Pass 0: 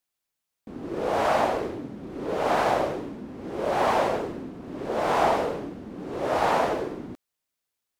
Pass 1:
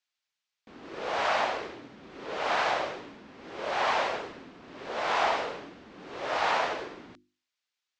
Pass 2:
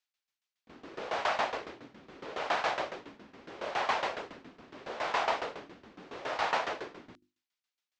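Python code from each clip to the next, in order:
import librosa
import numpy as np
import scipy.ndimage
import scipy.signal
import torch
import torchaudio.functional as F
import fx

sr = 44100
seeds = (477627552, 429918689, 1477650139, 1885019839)

y1 = scipy.signal.sosfilt(scipy.signal.bessel(8, 4200.0, 'lowpass', norm='mag', fs=sr, output='sos'), x)
y1 = fx.tilt_shelf(y1, sr, db=-10.0, hz=920.0)
y1 = fx.hum_notches(y1, sr, base_hz=50, count=7)
y1 = y1 * 10.0 ** (-3.5 / 20.0)
y2 = fx.tremolo_shape(y1, sr, shape='saw_down', hz=7.2, depth_pct=85)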